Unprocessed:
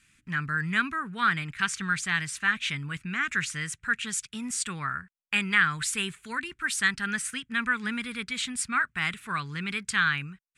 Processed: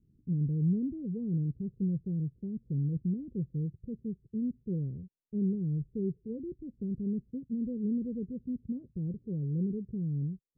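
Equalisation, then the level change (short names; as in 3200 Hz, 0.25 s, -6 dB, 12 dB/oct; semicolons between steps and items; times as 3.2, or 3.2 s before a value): rippled Chebyshev low-pass 530 Hz, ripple 3 dB; +6.0 dB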